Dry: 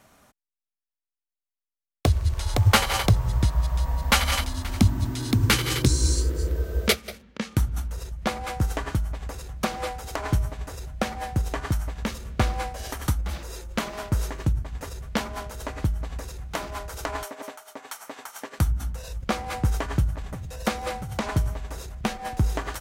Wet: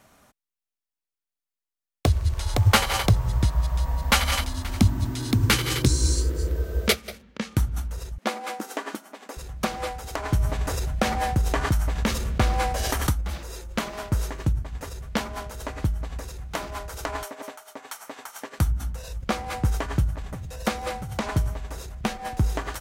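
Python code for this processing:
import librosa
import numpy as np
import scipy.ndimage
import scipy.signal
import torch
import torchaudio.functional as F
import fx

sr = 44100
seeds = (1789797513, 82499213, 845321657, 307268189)

y = fx.brickwall_highpass(x, sr, low_hz=200.0, at=(8.18, 9.37))
y = fx.env_flatten(y, sr, amount_pct=50, at=(10.39, 13.09))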